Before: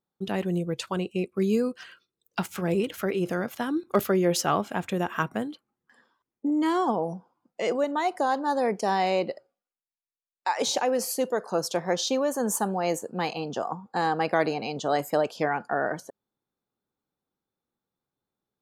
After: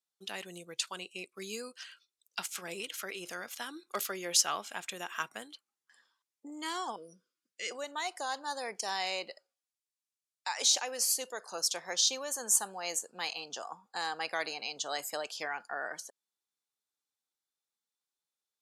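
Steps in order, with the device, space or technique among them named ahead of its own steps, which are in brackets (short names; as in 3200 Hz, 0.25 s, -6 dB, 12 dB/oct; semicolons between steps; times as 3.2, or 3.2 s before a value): 6.96–7.71 Chebyshev band-stop 430–1600 Hz, order 2; piezo pickup straight into a mixer (LPF 7900 Hz 12 dB/oct; differentiator); gain +7 dB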